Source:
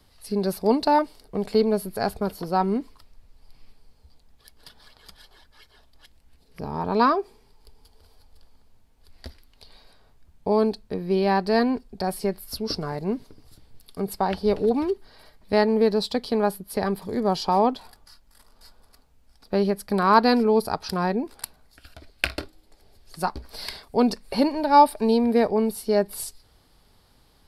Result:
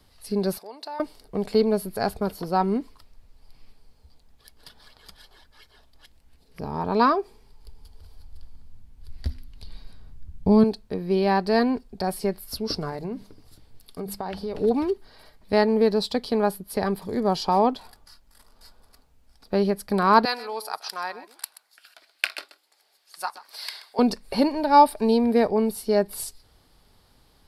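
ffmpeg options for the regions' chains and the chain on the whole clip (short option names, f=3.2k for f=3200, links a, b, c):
-filter_complex "[0:a]asettb=1/sr,asplit=3[a][b][c];[a]atrim=end=0.584[d];[b]atrim=start=0.58:end=1,asetpts=PTS-STARTPTS,afade=t=in:d=0.004:c=qsin,afade=t=out:st=0.416:d=0.004:c=qsin,acompressor=threshold=-35dB:ratio=3:attack=3.2:release=140:knee=1:detection=peak,highpass=610[e];[c]atrim=start=0.996[f];[d][e]acrossfade=d=0.004:c1=hsin:c2=qsin[g];[g][f]acrossfade=d=0.004:c1=qsin:c2=hsin,asettb=1/sr,asplit=3[h][i][j];[h]atrim=end=7.154[k];[i]atrim=start=7.15:end=10.64,asetpts=PTS-STARTPTS,afade=t=in:d=0.004:c=qsin,afade=t=out:st=3.486:d=0.004:c=qsin,bandreject=f=124.6:t=h:w=4,bandreject=f=249.2:t=h:w=4,asubboost=boost=8:cutoff=220[l];[j]atrim=start=10.636[m];[k][l]acrossfade=d=0.004:c1=hsin:c2=qsin[n];[n][m]acrossfade=d=0.004:c1=qsin:c2=hsin,asettb=1/sr,asplit=3[o][p][q];[o]atrim=end=12.894[r];[p]atrim=start=12.89:end=14.55,asetpts=PTS-STARTPTS,afade=t=in:d=0.004:c=qsin,afade=t=out:st=1.656:d=0.004:c=qsin,bandreject=f=50:t=h:w=6,bandreject=f=100:t=h:w=6,bandreject=f=150:t=h:w=6,bandreject=f=200:t=h:w=6,acompressor=threshold=-27dB:ratio=6:attack=3.2:release=140:knee=1:detection=peak[s];[q]atrim=start=14.546[t];[r][s]acrossfade=d=0.004:c1=hsin:c2=qsin[u];[u][t]acrossfade=d=0.004:c1=qsin:c2=hsin,asettb=1/sr,asplit=3[v][w][x];[v]atrim=end=20.254[y];[w]atrim=start=20.25:end=23.99,asetpts=PTS-STARTPTS,afade=t=in:d=0.004:c=qsin,afade=t=out:st=3.736:d=0.004:c=qsin,highpass=1k,aecho=1:1:129:0.168,atrim=end_sample=164934[z];[x]atrim=start=23.986[aa];[y][z]acrossfade=d=0.004:c1=hsin:c2=qsin[ab];[ab][aa]acrossfade=d=0.004:c1=qsin:c2=hsin"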